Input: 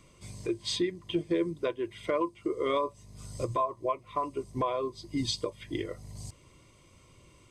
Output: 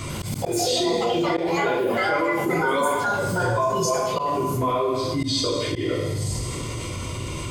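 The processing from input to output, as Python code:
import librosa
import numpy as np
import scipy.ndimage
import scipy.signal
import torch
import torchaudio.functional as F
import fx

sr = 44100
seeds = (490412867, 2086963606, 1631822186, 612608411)

y = fx.rev_double_slope(x, sr, seeds[0], early_s=0.85, late_s=2.8, knee_db=-18, drr_db=-7.5)
y = fx.echo_pitch(y, sr, ms=95, semitones=6, count=2, db_per_echo=-3.0)
y = fx.auto_swell(y, sr, attack_ms=156.0)
y = fx.env_flatten(y, sr, amount_pct=70)
y = y * 10.0 ** (-4.5 / 20.0)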